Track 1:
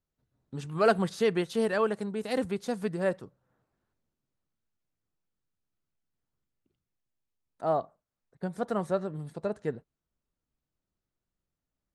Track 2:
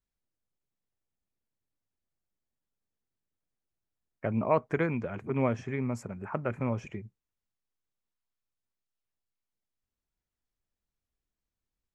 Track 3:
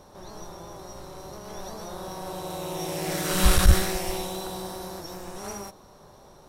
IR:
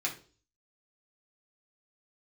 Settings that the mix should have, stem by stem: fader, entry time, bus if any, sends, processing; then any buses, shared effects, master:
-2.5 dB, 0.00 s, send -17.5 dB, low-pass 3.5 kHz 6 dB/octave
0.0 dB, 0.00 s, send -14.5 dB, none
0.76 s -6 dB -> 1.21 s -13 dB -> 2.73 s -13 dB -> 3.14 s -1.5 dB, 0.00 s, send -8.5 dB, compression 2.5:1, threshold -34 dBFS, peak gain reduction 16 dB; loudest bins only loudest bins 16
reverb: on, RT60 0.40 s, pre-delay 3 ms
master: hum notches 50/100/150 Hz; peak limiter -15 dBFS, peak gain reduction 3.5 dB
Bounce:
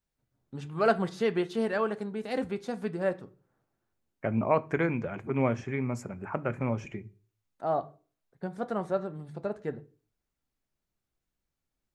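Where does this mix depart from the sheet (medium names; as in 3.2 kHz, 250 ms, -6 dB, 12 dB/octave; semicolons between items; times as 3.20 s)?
stem 1: send -17.5 dB -> -11.5 dB; stem 3: muted; master: missing peak limiter -15 dBFS, peak gain reduction 3.5 dB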